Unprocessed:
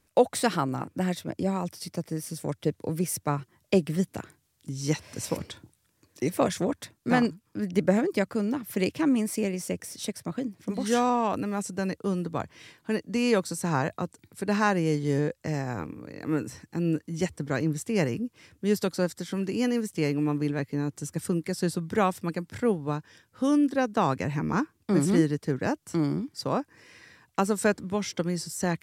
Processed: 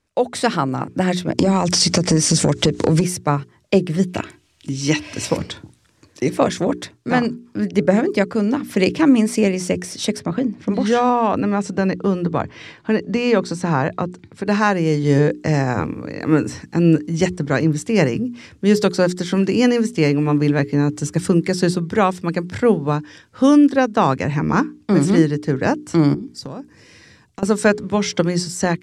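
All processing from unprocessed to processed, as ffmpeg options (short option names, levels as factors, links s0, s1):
-filter_complex "[0:a]asettb=1/sr,asplit=3[s0][s1][s2];[s0]atrim=end=1.384[s3];[s1]atrim=start=1.38:end=3.02,asetpts=PTS-STARTPTS,afade=t=in:d=0.004:c=qsin,afade=t=out:st=1.636:d=0.004:c=qsin,lowpass=f=7500:t=q:w=2,acompressor=threshold=0.0112:ratio=16:attack=3.2:release=140:knee=1:detection=peak,aeval=exprs='0.126*sin(PI/2*4.47*val(0)/0.126)':c=same[s4];[s2]atrim=start=3.016[s5];[s3][s4]acrossfade=d=0.004:c1=hsin:c2=qsin[s6];[s6][s5]acrossfade=d=0.004:c1=qsin:c2=hsin,asettb=1/sr,asplit=3[s7][s8][s9];[s7]atrim=end=4.084[s10];[s8]atrim=start=4.08:end=5.27,asetpts=PTS-STARTPTS,afade=t=in:d=0.004:c=qsin,afade=t=out:st=1.186:d=0.004:c=qsin,equalizer=f=2700:w=2.2:g=8,aecho=1:1:3.1:0.37,atrim=end_sample=52479[s11];[s9]atrim=start=5.266[s12];[s10][s11]acrossfade=d=0.004:c1=hsin:c2=qsin[s13];[s13][s12]acrossfade=d=0.004:c1=qsin:c2=hsin,asettb=1/sr,asplit=3[s14][s15][s16];[s14]atrim=end=10.194[s17];[s15]atrim=start=10.19:end=14.46,asetpts=PTS-STARTPTS,afade=t=in:d=0.004:c=qsin,afade=t=out:st=4.266:d=0.004:c=qsin,aemphasis=mode=reproduction:type=50fm,acompressor=threshold=0.0282:ratio=1.5:attack=3.2:release=140:knee=1:detection=peak[s18];[s16]atrim=start=14.456[s19];[s17][s18]acrossfade=d=0.004:c1=hsin:c2=qsin[s20];[s20][s19]acrossfade=d=0.004:c1=qsin:c2=hsin,asettb=1/sr,asplit=3[s21][s22][s23];[s21]atrim=end=26.144[s24];[s22]atrim=start=26.14:end=27.43,asetpts=PTS-STARTPTS,afade=t=in:d=0.004:c=qsin,afade=t=out:st=1.286:d=0.004:c=qsin,equalizer=f=1400:w=0.32:g=-11,acompressor=threshold=0.0112:ratio=12:attack=3.2:release=140:knee=1:detection=peak[s25];[s23]atrim=start=27.426[s26];[s24][s25]acrossfade=d=0.004:c1=hsin:c2=qsin[s27];[s27][s26]acrossfade=d=0.004:c1=qsin:c2=hsin,lowpass=7000,bandreject=f=60:t=h:w=6,bandreject=f=120:t=h:w=6,bandreject=f=180:t=h:w=6,bandreject=f=240:t=h:w=6,bandreject=f=300:t=h:w=6,bandreject=f=360:t=h:w=6,bandreject=f=420:t=h:w=6,dynaudnorm=f=100:g=5:m=5.62,volume=0.891"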